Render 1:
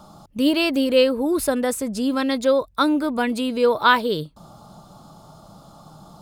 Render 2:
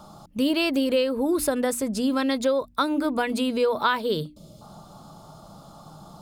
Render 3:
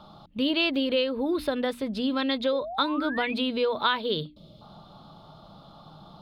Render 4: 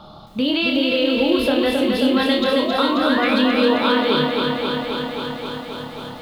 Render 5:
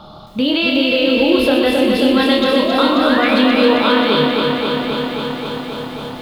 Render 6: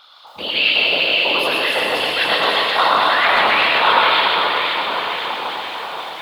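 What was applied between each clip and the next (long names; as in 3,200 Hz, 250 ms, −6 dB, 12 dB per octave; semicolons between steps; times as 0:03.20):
mains-hum notches 60/120/180/240/300 Hz; gain on a spectral selection 0:04.28–0:04.62, 660–2,000 Hz −17 dB; downward compressor 5 to 1, threshold −19 dBFS, peak gain reduction 9 dB
high shelf with overshoot 5,200 Hz −13 dB, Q 3; sound drawn into the spectrogram rise, 0:02.52–0:03.34, 470–2,600 Hz −32 dBFS; level −3.5 dB
flutter between parallel walls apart 4.7 metres, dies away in 0.3 s; brickwall limiter −18.5 dBFS, peak gain reduction 8.5 dB; feedback echo at a low word length 267 ms, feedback 80%, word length 10 bits, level −4 dB; level +7 dB
echo with a time of its own for lows and highs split 360 Hz, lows 699 ms, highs 120 ms, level −9 dB; level +3.5 dB
auto-filter high-pass square 2 Hz 880–2,000 Hz; random phases in short frames; convolution reverb RT60 1.7 s, pre-delay 99 ms, DRR −0.5 dB; level −2.5 dB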